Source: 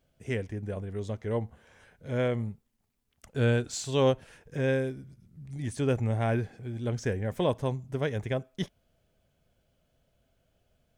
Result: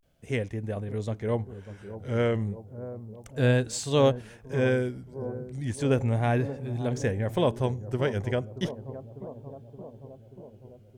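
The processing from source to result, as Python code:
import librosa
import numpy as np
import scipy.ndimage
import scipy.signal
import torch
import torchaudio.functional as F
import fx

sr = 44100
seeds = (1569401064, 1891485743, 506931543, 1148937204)

y = fx.echo_bbd(x, sr, ms=600, stages=4096, feedback_pct=68, wet_db=-13)
y = fx.vibrato(y, sr, rate_hz=0.34, depth_cents=94.0)
y = F.gain(torch.from_numpy(y), 2.5).numpy()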